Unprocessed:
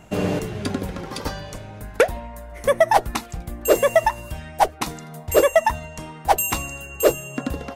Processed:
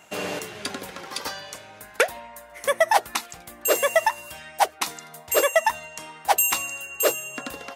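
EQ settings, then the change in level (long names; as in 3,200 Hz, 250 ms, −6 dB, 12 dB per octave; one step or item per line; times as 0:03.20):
high-pass filter 1,400 Hz 6 dB per octave
+3.0 dB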